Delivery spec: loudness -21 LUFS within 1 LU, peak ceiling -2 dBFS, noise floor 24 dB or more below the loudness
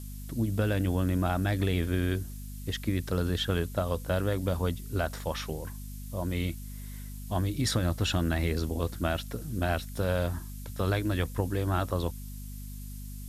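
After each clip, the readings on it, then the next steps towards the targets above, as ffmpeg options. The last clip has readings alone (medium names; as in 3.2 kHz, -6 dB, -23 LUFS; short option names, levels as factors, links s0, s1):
hum 50 Hz; highest harmonic 250 Hz; hum level -39 dBFS; noise floor -40 dBFS; noise floor target -55 dBFS; loudness -30.5 LUFS; peak level -14.0 dBFS; loudness target -21.0 LUFS
-> -af "bandreject=f=50:t=h:w=6,bandreject=f=100:t=h:w=6,bandreject=f=150:t=h:w=6,bandreject=f=200:t=h:w=6,bandreject=f=250:t=h:w=6"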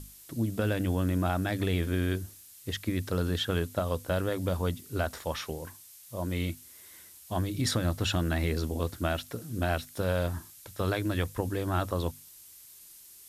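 hum not found; noise floor -52 dBFS; noise floor target -56 dBFS
-> -af "afftdn=nr=6:nf=-52"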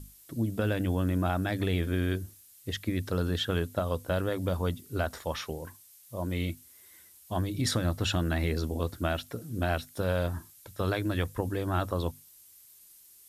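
noise floor -56 dBFS; loudness -31.5 LUFS; peak level -14.0 dBFS; loudness target -21.0 LUFS
-> -af "volume=3.35"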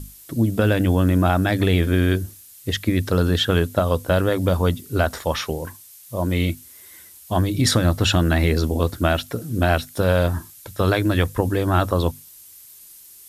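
loudness -21.0 LUFS; peak level -3.5 dBFS; noise floor -45 dBFS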